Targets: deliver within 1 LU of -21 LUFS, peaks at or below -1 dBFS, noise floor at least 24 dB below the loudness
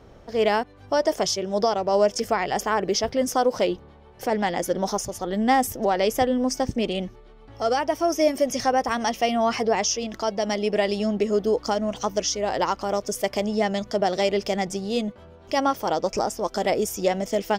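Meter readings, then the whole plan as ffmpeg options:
loudness -24.0 LUFS; peak -9.0 dBFS; loudness target -21.0 LUFS
-> -af "volume=3dB"

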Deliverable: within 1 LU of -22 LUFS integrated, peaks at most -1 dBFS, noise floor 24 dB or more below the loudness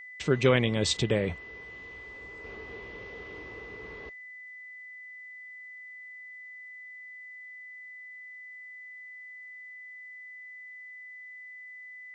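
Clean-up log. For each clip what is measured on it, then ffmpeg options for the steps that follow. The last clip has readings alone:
steady tone 2000 Hz; tone level -43 dBFS; loudness -35.0 LUFS; peak -10.0 dBFS; loudness target -22.0 LUFS
-> -af "bandreject=f=2k:w=30"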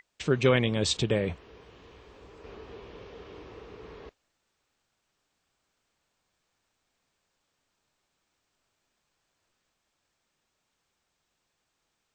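steady tone none; loudness -26.5 LUFS; peak -10.0 dBFS; loudness target -22.0 LUFS
-> -af "volume=4.5dB"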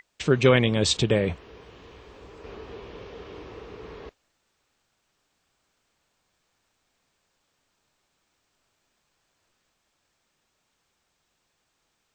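loudness -22.0 LUFS; peak -5.5 dBFS; noise floor -75 dBFS

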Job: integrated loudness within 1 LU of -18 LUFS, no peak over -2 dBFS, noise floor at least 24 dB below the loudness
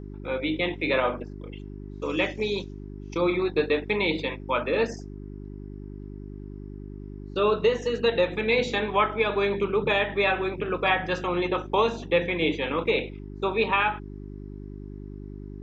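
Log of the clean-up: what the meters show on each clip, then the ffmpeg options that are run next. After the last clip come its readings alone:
hum 50 Hz; harmonics up to 400 Hz; hum level -36 dBFS; loudness -25.5 LUFS; peak -11.0 dBFS; loudness target -18.0 LUFS
-> -af "bandreject=f=50:t=h:w=4,bandreject=f=100:t=h:w=4,bandreject=f=150:t=h:w=4,bandreject=f=200:t=h:w=4,bandreject=f=250:t=h:w=4,bandreject=f=300:t=h:w=4,bandreject=f=350:t=h:w=4,bandreject=f=400:t=h:w=4"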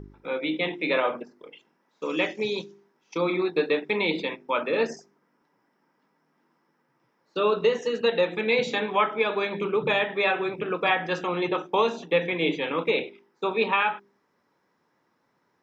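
hum none; loudness -26.0 LUFS; peak -11.0 dBFS; loudness target -18.0 LUFS
-> -af "volume=8dB"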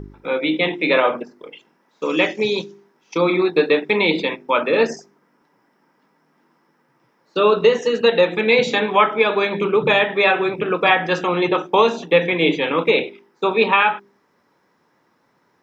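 loudness -18.0 LUFS; peak -3.0 dBFS; noise floor -63 dBFS

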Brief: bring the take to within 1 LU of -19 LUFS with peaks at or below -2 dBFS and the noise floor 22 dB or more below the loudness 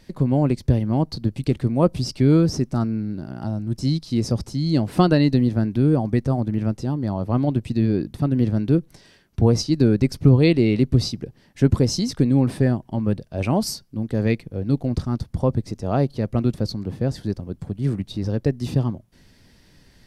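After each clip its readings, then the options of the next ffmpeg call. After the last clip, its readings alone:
loudness -21.5 LUFS; peak -3.0 dBFS; loudness target -19.0 LUFS
-> -af "volume=2.5dB,alimiter=limit=-2dB:level=0:latency=1"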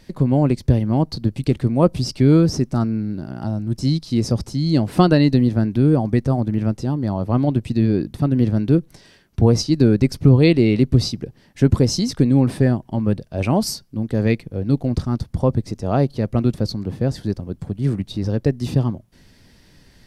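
loudness -19.0 LUFS; peak -2.0 dBFS; noise floor -53 dBFS

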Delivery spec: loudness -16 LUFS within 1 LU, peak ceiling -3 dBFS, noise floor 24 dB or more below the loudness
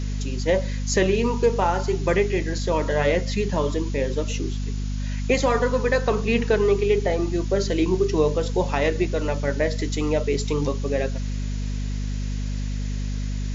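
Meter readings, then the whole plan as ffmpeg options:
hum 50 Hz; harmonics up to 250 Hz; hum level -24 dBFS; noise floor -27 dBFS; noise floor target -48 dBFS; loudness -24.0 LUFS; peak -8.0 dBFS; loudness target -16.0 LUFS
-> -af "bandreject=f=50:t=h:w=6,bandreject=f=100:t=h:w=6,bandreject=f=150:t=h:w=6,bandreject=f=200:t=h:w=6,bandreject=f=250:t=h:w=6"
-af "afftdn=nr=21:nf=-27"
-af "volume=8dB,alimiter=limit=-3dB:level=0:latency=1"

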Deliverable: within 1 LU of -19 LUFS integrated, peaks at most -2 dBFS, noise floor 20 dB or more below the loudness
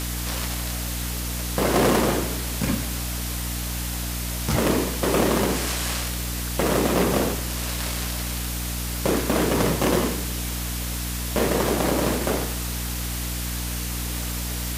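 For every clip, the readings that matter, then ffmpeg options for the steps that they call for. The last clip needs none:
hum 60 Hz; harmonics up to 300 Hz; hum level -27 dBFS; noise floor -29 dBFS; noise floor target -45 dBFS; loudness -24.5 LUFS; peak -7.0 dBFS; loudness target -19.0 LUFS
-> -af "bandreject=f=60:t=h:w=4,bandreject=f=120:t=h:w=4,bandreject=f=180:t=h:w=4,bandreject=f=240:t=h:w=4,bandreject=f=300:t=h:w=4"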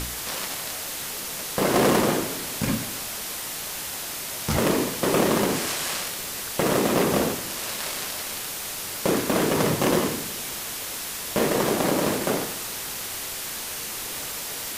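hum none; noise floor -33 dBFS; noise floor target -46 dBFS
-> -af "afftdn=nr=13:nf=-33"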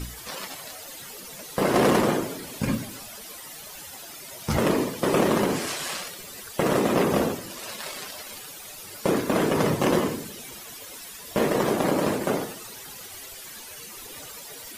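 noise floor -42 dBFS; noise floor target -46 dBFS
-> -af "afftdn=nr=6:nf=-42"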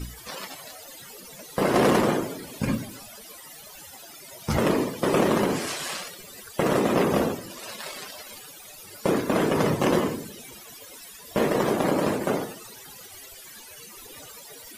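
noise floor -45 dBFS; noise floor target -46 dBFS
-> -af "afftdn=nr=6:nf=-45"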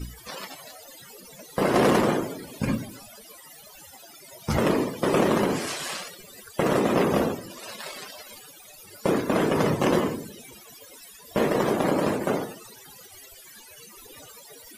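noise floor -48 dBFS; loudness -25.0 LUFS; peak -8.5 dBFS; loudness target -19.0 LUFS
-> -af "volume=6dB"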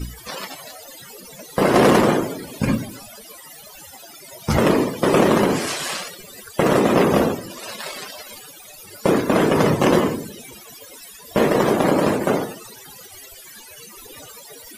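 loudness -19.0 LUFS; peak -2.5 dBFS; noise floor -42 dBFS

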